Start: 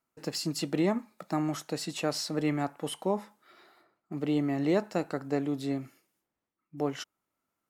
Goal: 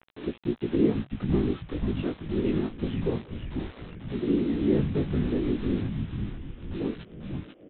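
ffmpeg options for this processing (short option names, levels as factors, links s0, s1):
-filter_complex "[0:a]lowshelf=f=460:t=q:w=3:g=8.5,acompressor=mode=upward:threshold=0.0891:ratio=2.5,afftfilt=real='hypot(re,im)*cos(2*PI*random(0))':imag='hypot(re,im)*sin(2*PI*random(1))':win_size=512:overlap=0.75,aresample=8000,acrusher=bits=6:mix=0:aa=0.000001,aresample=44100,flanger=delay=16.5:depth=3.7:speed=0.26,asplit=2[s0][s1];[s1]asplit=6[s2][s3][s4][s5][s6][s7];[s2]adelay=492,afreqshift=-140,volume=0.631[s8];[s3]adelay=984,afreqshift=-280,volume=0.309[s9];[s4]adelay=1476,afreqshift=-420,volume=0.151[s10];[s5]adelay=1968,afreqshift=-560,volume=0.0741[s11];[s6]adelay=2460,afreqshift=-700,volume=0.0363[s12];[s7]adelay=2952,afreqshift=-840,volume=0.0178[s13];[s8][s9][s10][s11][s12][s13]amix=inputs=6:normalize=0[s14];[s0][s14]amix=inputs=2:normalize=0"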